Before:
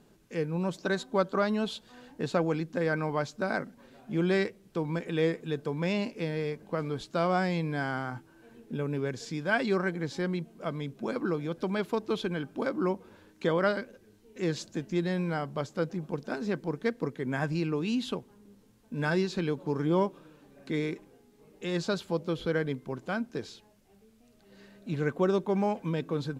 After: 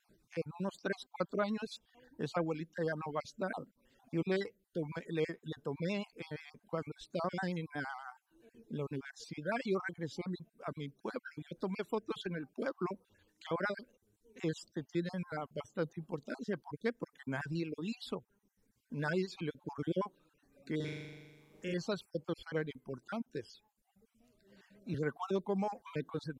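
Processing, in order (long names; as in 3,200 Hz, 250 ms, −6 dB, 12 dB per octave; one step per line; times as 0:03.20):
time-frequency cells dropped at random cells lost 31%
reverb reduction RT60 1.1 s
pitch vibrato 8 Hz 48 cents
0:20.76–0:21.74: flutter between parallel walls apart 7 metres, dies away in 1.4 s
0:24.94–0:26.09: multiband upward and downward compressor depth 40%
level −5.5 dB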